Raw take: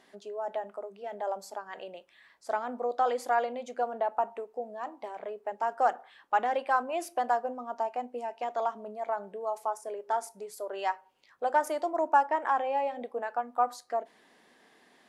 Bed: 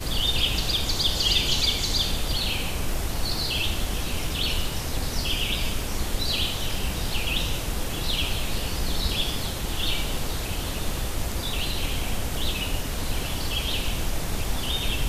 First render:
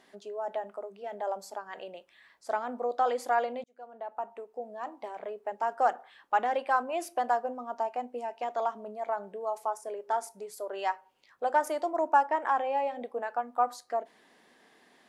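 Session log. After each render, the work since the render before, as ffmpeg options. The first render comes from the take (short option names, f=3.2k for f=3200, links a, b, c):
-filter_complex "[0:a]asplit=2[a][b];[a]atrim=end=3.64,asetpts=PTS-STARTPTS,afade=t=out:st=3.636:d=0.004:c=hsin[c];[b]atrim=start=3.64,asetpts=PTS-STARTPTS,afade=t=in:d=1.25[d];[c][d]concat=n=2:v=0:a=1"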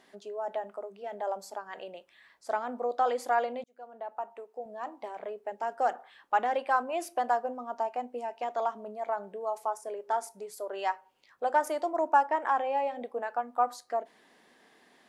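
-filter_complex "[0:a]asettb=1/sr,asplit=3[a][b][c];[a]atrim=end=4.174[d];[b]atrim=start=4.17:end=4.66,asetpts=PTS-STARTPTS,afade=t=in:d=0.004:c=qsin,afade=t=out:st=0.486:d=0.004:c=qsin,highpass=f=330:p=1[e];[c]atrim=start=4.656[f];[d][e]acrossfade=d=0.004:c1=hsin:c2=qsin[g];[g][f]acrossfade=d=0.004:c1=qsin:c2=hsin,asettb=1/sr,asplit=3[h][i][j];[h]atrim=end=5.404[k];[i]atrim=start=5.4:end=5.91,asetpts=PTS-STARTPTS,afade=t=in:d=0.004:c=qsin,afade=t=out:st=0.506:d=0.004:c=qsin,equalizer=f=1.1k:t=o:w=0.83:g=-6[l];[j]atrim=start=5.906[m];[k][l]acrossfade=d=0.004:c1=hsin:c2=qsin[n];[n][m]acrossfade=d=0.004:c1=qsin:c2=hsin"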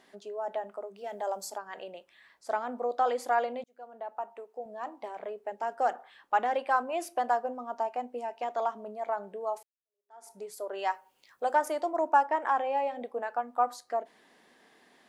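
-filter_complex "[0:a]asettb=1/sr,asplit=3[a][b][c];[a]atrim=end=0.964[d];[b]atrim=start=0.96:end=1.58,asetpts=PTS-STARTPTS,afade=t=in:d=0.004:c=qsin,afade=t=out:st=0.616:d=0.004:c=qsin,bass=f=250:g=1,treble=f=4k:g=9[e];[c]atrim=start=1.576[f];[d][e]acrossfade=d=0.004:c1=hsin:c2=qsin[g];[g][f]acrossfade=d=0.004:c1=qsin:c2=hsin,asettb=1/sr,asplit=3[h][i][j];[h]atrim=end=10.904[k];[i]atrim=start=10.9:end=11.55,asetpts=PTS-STARTPTS,afade=t=in:d=0.004:c=qsin,afade=t=out:st=0.646:d=0.004:c=qsin,highshelf=f=6.5k:g=11.5[l];[j]atrim=start=11.546[m];[k][l]acrossfade=d=0.004:c1=hsin:c2=qsin[n];[n][m]acrossfade=d=0.004:c1=qsin:c2=hsin,asplit=2[o][p];[o]atrim=end=9.63,asetpts=PTS-STARTPTS,afade=t=out:st=9.626:d=0.004:c=hsin[q];[p]atrim=start=9.63,asetpts=PTS-STARTPTS,afade=t=in:d=0.68:c=exp[r];[q][r]concat=n=2:v=0:a=1"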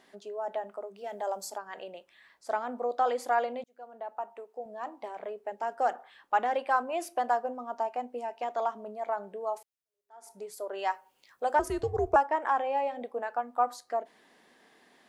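-filter_complex "[0:a]asettb=1/sr,asplit=3[a][b][c];[a]atrim=end=11.594[d];[b]atrim=start=11.59:end=12.16,asetpts=PTS-STARTPTS,afade=t=in:d=0.004:c=qsin,afade=t=out:st=0.566:d=0.004:c=qsin,afreqshift=-240[e];[c]atrim=start=12.156[f];[d][e]acrossfade=d=0.004:c1=hsin:c2=qsin[g];[g][f]acrossfade=d=0.004:c1=qsin:c2=hsin"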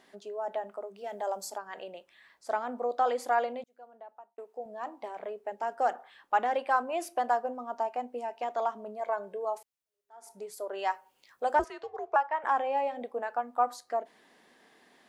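-filter_complex "[0:a]asettb=1/sr,asplit=3[a][b][c];[a]atrim=end=9.004[d];[b]atrim=start=9:end=9.45,asetpts=PTS-STARTPTS,afade=t=in:d=0.004:c=qsin,afade=t=out:st=0.446:d=0.004:c=qsin,aecho=1:1:1.9:0.56,atrim=end_sample=19845[e];[c]atrim=start=9.446[f];[d][e]acrossfade=d=0.004:c1=hsin:c2=qsin[g];[g][f]acrossfade=d=0.004:c1=qsin:c2=hsin,asettb=1/sr,asplit=3[h][i][j];[h]atrim=end=11.644[k];[i]atrim=start=11.64:end=12.44,asetpts=PTS-STARTPTS,afade=t=in:d=0.004:c=qsin,afade=t=out:st=0.796:d=0.004:c=qsin,highpass=780,lowpass=3.6k[l];[j]atrim=start=12.436[m];[k][l]acrossfade=d=0.004:c1=hsin:c2=qsin[n];[n][m]acrossfade=d=0.004:c1=qsin:c2=hsin,asplit=2[o][p];[o]atrim=end=4.38,asetpts=PTS-STARTPTS,afade=t=out:st=3.45:d=0.93[q];[p]atrim=start=4.38,asetpts=PTS-STARTPTS,afade=t=in:d=0.004:c=hsin[r];[q][r]concat=n=2:v=0:a=1"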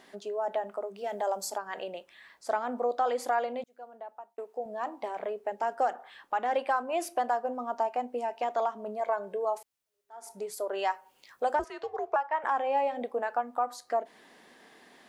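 -filter_complex "[0:a]asplit=2[a][b];[b]acompressor=threshold=-36dB:ratio=6,volume=-2dB[c];[a][c]amix=inputs=2:normalize=0,alimiter=limit=-18dB:level=0:latency=1:release=221"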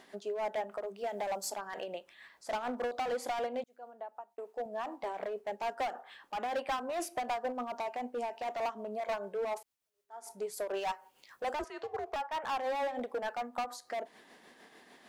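-af "asoftclip=type=hard:threshold=-29.5dB,tremolo=f=6.7:d=0.39"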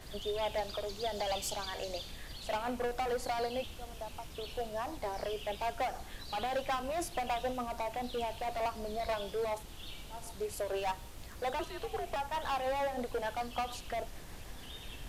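-filter_complex "[1:a]volume=-20.5dB[a];[0:a][a]amix=inputs=2:normalize=0"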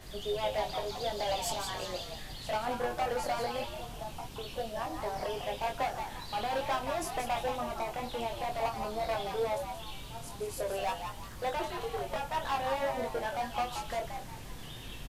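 -filter_complex "[0:a]asplit=2[a][b];[b]adelay=22,volume=-4.5dB[c];[a][c]amix=inputs=2:normalize=0,asplit=5[d][e][f][g][h];[e]adelay=176,afreqshift=110,volume=-7dB[i];[f]adelay=352,afreqshift=220,volume=-16.6dB[j];[g]adelay=528,afreqshift=330,volume=-26.3dB[k];[h]adelay=704,afreqshift=440,volume=-35.9dB[l];[d][i][j][k][l]amix=inputs=5:normalize=0"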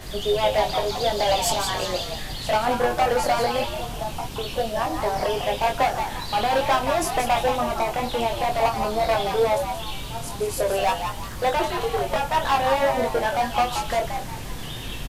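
-af "volume=11.5dB"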